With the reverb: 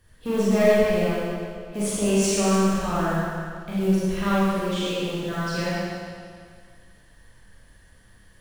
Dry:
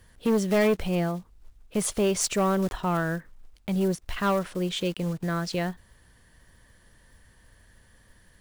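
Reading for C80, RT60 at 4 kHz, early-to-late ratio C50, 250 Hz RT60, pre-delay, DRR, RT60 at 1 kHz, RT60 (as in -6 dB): -3.0 dB, 1.9 s, -5.5 dB, 2.0 s, 26 ms, -9.5 dB, 2.0 s, 2.0 s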